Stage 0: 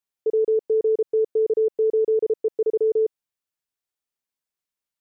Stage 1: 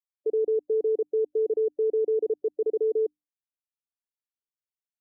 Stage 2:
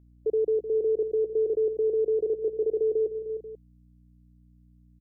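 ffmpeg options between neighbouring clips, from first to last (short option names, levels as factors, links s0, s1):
-af "bandreject=f=50:t=h:w=6,bandreject=f=100:t=h:w=6,bandreject=f=150:t=h:w=6,bandreject=f=200:t=h:w=6,bandreject=f=250:t=h:w=6,bandreject=f=300:t=h:w=6,afftdn=nr=18:nf=-31,equalizer=f=125:t=o:w=1:g=-9,equalizer=f=250:t=o:w=1:g=5,equalizer=f=500:t=o:w=1:g=-6"
-filter_complex "[0:a]aeval=exprs='val(0)+0.00178*(sin(2*PI*60*n/s)+sin(2*PI*2*60*n/s)/2+sin(2*PI*3*60*n/s)/3+sin(2*PI*4*60*n/s)/4+sin(2*PI*5*60*n/s)/5)':c=same,asplit=2[s0][s1];[s1]aecho=0:1:306|488:0.299|0.158[s2];[s0][s2]amix=inputs=2:normalize=0"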